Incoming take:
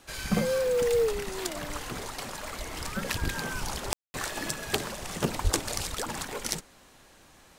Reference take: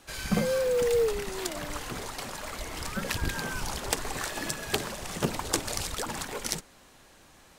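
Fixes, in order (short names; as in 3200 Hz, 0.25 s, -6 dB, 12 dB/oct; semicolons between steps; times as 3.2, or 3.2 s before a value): 5.43–5.55 HPF 140 Hz 24 dB/oct; room tone fill 3.93–4.14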